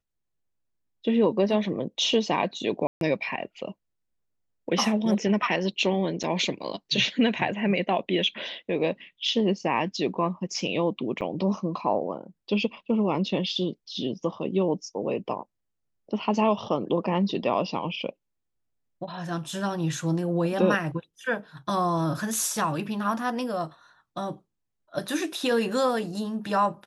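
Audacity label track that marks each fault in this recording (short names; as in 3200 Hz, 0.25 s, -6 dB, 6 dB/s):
2.870000	3.010000	gap 0.142 s
6.230000	6.240000	gap 7.5 ms
11.210000	11.220000	gap 7.9 ms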